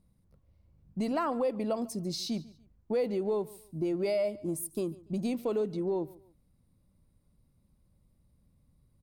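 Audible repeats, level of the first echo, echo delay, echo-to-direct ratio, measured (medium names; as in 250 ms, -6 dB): 2, -21.0 dB, 144 ms, -20.5 dB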